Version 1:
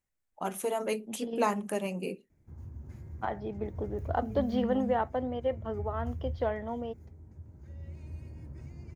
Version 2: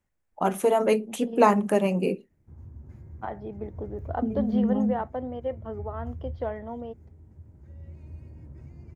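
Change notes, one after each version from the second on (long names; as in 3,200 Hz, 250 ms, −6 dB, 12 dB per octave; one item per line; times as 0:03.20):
first voice +10.5 dB
master: add high-shelf EQ 2,400 Hz −9.5 dB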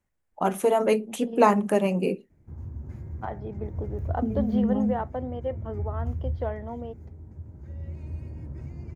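background +7.0 dB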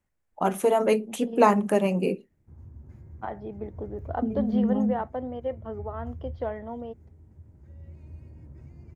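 background −8.5 dB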